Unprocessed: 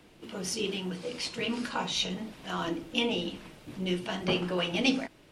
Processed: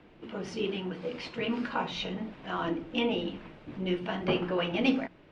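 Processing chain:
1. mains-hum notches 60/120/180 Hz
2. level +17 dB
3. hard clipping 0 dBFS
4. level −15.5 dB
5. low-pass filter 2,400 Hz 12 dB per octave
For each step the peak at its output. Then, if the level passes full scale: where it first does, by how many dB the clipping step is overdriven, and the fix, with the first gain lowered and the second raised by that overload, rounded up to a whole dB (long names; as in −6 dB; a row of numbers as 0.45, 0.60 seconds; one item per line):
−11.5, +5.5, 0.0, −15.5, −15.5 dBFS
step 2, 5.5 dB
step 2 +11 dB, step 4 −9.5 dB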